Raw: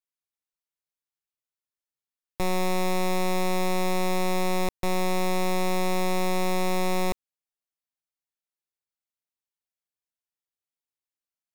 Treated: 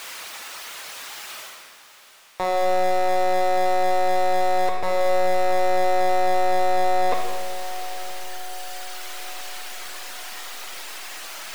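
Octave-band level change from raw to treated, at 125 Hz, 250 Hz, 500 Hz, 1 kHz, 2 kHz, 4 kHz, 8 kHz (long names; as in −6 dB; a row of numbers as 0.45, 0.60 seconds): can't be measured, −5.0 dB, +7.0 dB, +9.5 dB, +4.5 dB, +3.5 dB, +3.0 dB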